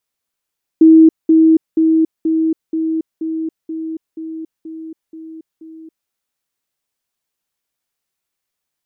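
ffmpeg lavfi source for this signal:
ffmpeg -f lavfi -i "aevalsrc='pow(10,(-3-3*floor(t/0.48))/20)*sin(2*PI*321*t)*clip(min(mod(t,0.48),0.28-mod(t,0.48))/0.005,0,1)':duration=5.28:sample_rate=44100" out.wav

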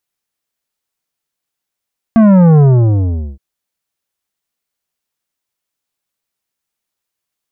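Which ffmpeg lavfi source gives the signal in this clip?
ffmpeg -f lavfi -i "aevalsrc='0.562*clip((1.22-t)/0.78,0,1)*tanh(3.55*sin(2*PI*230*1.22/log(65/230)*(exp(log(65/230)*t/1.22)-1)))/tanh(3.55)':duration=1.22:sample_rate=44100" out.wav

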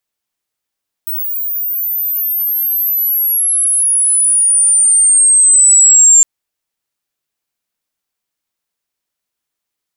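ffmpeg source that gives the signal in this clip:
ffmpeg -f lavfi -i "aevalsrc='pow(10,(-16.5+13.5*t/5.16)/20)*sin(2*PI*16000*5.16/log(7300/16000)*(exp(log(7300/16000)*t/5.16)-1))':duration=5.16:sample_rate=44100" out.wav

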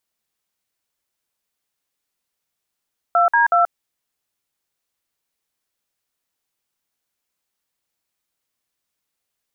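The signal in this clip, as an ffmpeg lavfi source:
ffmpeg -f lavfi -i "aevalsrc='0.188*clip(min(mod(t,0.185),0.131-mod(t,0.185))/0.002,0,1)*(eq(floor(t/0.185),0)*(sin(2*PI*697*mod(t,0.185))+sin(2*PI*1336*mod(t,0.185)))+eq(floor(t/0.185),1)*(sin(2*PI*941*mod(t,0.185))+sin(2*PI*1633*mod(t,0.185)))+eq(floor(t/0.185),2)*(sin(2*PI*697*mod(t,0.185))+sin(2*PI*1336*mod(t,0.185))))':duration=0.555:sample_rate=44100" out.wav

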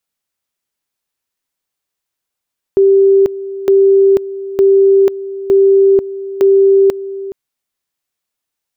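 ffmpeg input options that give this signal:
ffmpeg -f lavfi -i "aevalsrc='pow(10,(-5-15.5*gte(mod(t,0.91),0.49))/20)*sin(2*PI*391*t)':duration=4.55:sample_rate=44100" out.wav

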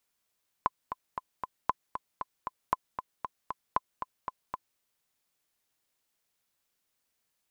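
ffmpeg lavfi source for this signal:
ffmpeg -f lavfi -i "aevalsrc='pow(10,(-11.5-9*gte(mod(t,4*60/232),60/232))/20)*sin(2*PI*1020*mod(t,60/232))*exp(-6.91*mod(t,60/232)/0.03)':duration=4.13:sample_rate=44100" out.wav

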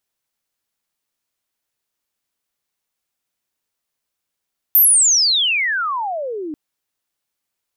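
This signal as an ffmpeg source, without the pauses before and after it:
ffmpeg -f lavfi -i "aevalsrc='pow(10,(-7.5-17*t/1.79)/20)*sin(2*PI*14000*1.79/log(290/14000)*(exp(log(290/14000)*t/1.79)-1))':duration=1.79:sample_rate=44100" out.wav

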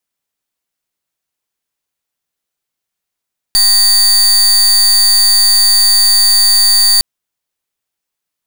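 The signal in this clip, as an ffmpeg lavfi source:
ffmpeg -f lavfi -i "aevalsrc='0.376*(2*lt(mod(4600*t,1),0.33)-1)':duration=3.46:sample_rate=44100" out.wav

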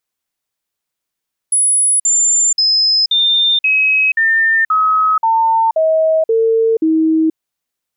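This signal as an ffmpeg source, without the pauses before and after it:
ffmpeg -f lavfi -i "aevalsrc='0.335*clip(min(mod(t,0.53),0.48-mod(t,0.53))/0.005,0,1)*sin(2*PI*10200*pow(2,-floor(t/0.53)/2)*mod(t,0.53))':duration=5.83:sample_rate=44100" out.wav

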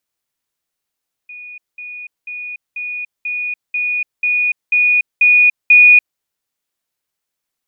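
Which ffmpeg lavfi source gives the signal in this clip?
ffmpeg -f lavfi -i "aevalsrc='pow(10,(-30.5+3*floor(t/0.49))/20)*sin(2*PI*2460*t)*clip(min(mod(t,0.49),0.29-mod(t,0.49))/0.005,0,1)':duration=4.9:sample_rate=44100" out.wav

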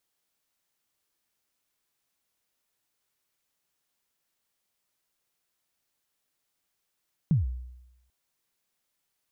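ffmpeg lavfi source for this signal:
ffmpeg -f lavfi -i "aevalsrc='0.141*pow(10,-3*t/0.92)*sin(2*PI*(180*0.147/log(62/180)*(exp(log(62/180)*min(t,0.147)/0.147)-1)+62*max(t-0.147,0)))':duration=0.79:sample_rate=44100" out.wav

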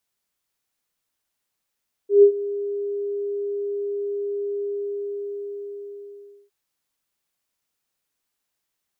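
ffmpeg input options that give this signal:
ffmpeg -f lavfi -i "aevalsrc='0.473*sin(2*PI*405*t)':duration=4.41:sample_rate=44100,afade=type=in:duration=0.137,afade=type=out:start_time=0.137:duration=0.087:silence=0.133,afade=type=out:start_time=2.53:duration=1.88" out.wav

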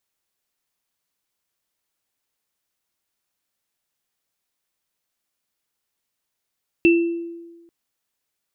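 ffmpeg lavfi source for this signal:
ffmpeg -f lavfi -i "aevalsrc='0.316*pow(10,-3*t/1.27)*sin(2*PI*338*t)+0.168*pow(10,-3*t/0.49)*sin(2*PI*2670*t)':duration=0.84:sample_rate=44100" out.wav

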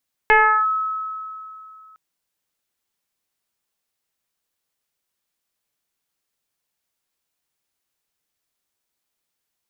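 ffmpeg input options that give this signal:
ffmpeg -f lavfi -i "aevalsrc='0.355*pow(10,-3*t/2.73)*sin(2*PI*1290*t+2.2*clip(1-t/0.36,0,1)*sin(2*PI*0.33*1290*t))':duration=1.66:sample_rate=44100" out.wav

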